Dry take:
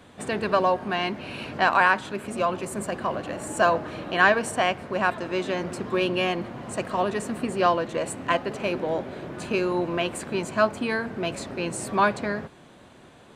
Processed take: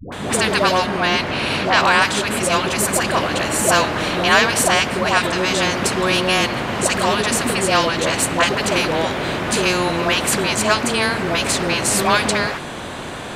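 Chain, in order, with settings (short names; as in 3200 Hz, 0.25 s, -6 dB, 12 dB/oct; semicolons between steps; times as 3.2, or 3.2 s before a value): dispersion highs, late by 0.124 s, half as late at 540 Hz; 0.86–2.02 high shelf 7000 Hz -8.5 dB; spectral compressor 2:1; gain +4.5 dB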